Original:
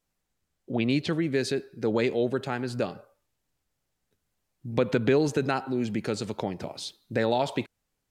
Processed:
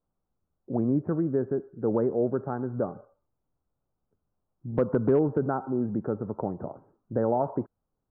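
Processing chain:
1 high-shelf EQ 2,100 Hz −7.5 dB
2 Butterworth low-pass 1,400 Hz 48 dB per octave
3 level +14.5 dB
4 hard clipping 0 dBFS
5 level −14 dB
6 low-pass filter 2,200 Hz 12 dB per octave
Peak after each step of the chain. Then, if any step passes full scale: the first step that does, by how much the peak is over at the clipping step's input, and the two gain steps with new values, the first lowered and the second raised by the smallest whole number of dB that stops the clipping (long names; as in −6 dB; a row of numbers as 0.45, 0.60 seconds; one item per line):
−10.5, −10.5, +4.0, 0.0, −14.0, −14.0 dBFS
step 3, 4.0 dB
step 3 +10.5 dB, step 5 −10 dB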